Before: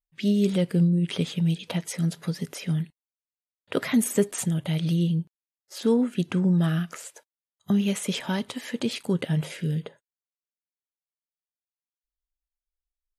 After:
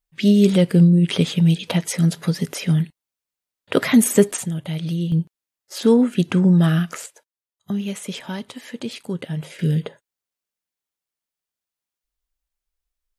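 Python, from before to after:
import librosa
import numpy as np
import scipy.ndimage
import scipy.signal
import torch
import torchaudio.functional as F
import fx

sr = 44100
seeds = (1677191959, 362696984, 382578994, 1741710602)

y = fx.gain(x, sr, db=fx.steps((0.0, 8.0), (4.37, 0.0), (5.12, 7.0), (7.06, -2.0), (9.59, 7.5)))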